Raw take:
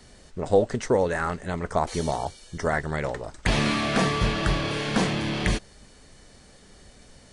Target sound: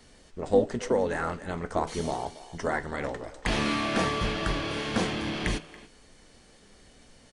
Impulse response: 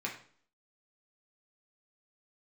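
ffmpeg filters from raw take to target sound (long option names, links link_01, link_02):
-filter_complex "[0:a]asplit=2[link_01][link_02];[link_02]asetrate=22050,aresample=44100,atempo=2,volume=-9dB[link_03];[link_01][link_03]amix=inputs=2:normalize=0,asplit=2[link_04][link_05];[link_05]adelay=280,highpass=300,lowpass=3400,asoftclip=type=hard:threshold=-16.5dB,volume=-16dB[link_06];[link_04][link_06]amix=inputs=2:normalize=0,asplit=2[link_07][link_08];[1:a]atrim=start_sample=2205,asetrate=57330,aresample=44100[link_09];[link_08][link_09]afir=irnorm=-1:irlink=0,volume=-7.5dB[link_10];[link_07][link_10]amix=inputs=2:normalize=0,volume=-6dB"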